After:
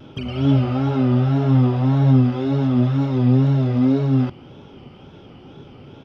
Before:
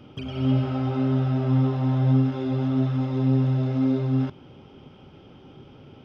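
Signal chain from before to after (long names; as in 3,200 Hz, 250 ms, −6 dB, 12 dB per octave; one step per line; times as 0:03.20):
downsampling to 32,000 Hz
tape wow and flutter 100 cents
level +5.5 dB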